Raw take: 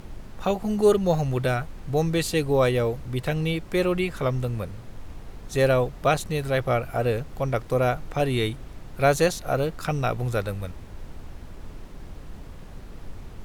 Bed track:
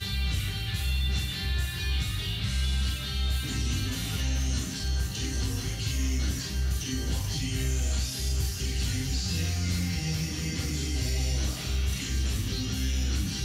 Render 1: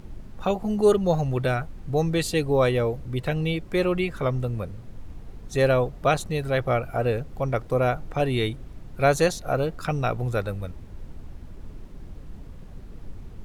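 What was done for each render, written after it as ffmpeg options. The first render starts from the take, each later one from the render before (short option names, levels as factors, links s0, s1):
-af "afftdn=nr=7:nf=-42"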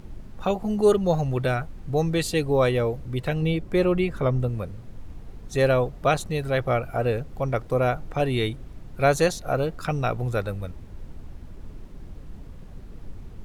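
-filter_complex "[0:a]asettb=1/sr,asplit=3[s0][s1][s2];[s0]atrim=end=3.424[s3];[s1]atrim=start=3.42:end=4.49,asetpts=PTS-STARTPTS,afade=t=in:d=0.004:c=qsin,afade=t=out:st=1.066:d=0.004:c=qsin,tiltshelf=f=970:g=3[s4];[s2]atrim=start=4.486[s5];[s3][s4]acrossfade=d=0.004:c1=hsin:c2=qsin[s6];[s6][s5]acrossfade=d=0.004:c1=qsin:c2=hsin"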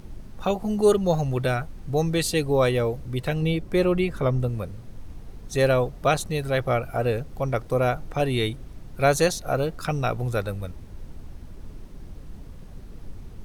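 -af "bass=f=250:g=0,treble=f=4000:g=5,bandreject=f=7200:w=16"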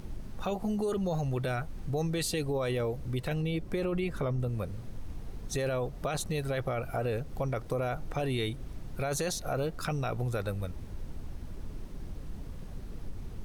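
-af "alimiter=limit=0.119:level=0:latency=1:release=11,acompressor=threshold=0.0251:ratio=2"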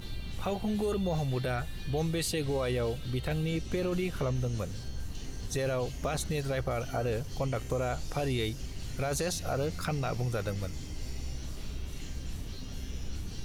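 -filter_complex "[1:a]volume=0.2[s0];[0:a][s0]amix=inputs=2:normalize=0"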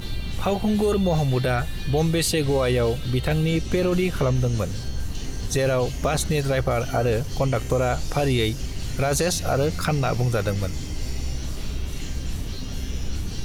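-af "volume=2.99"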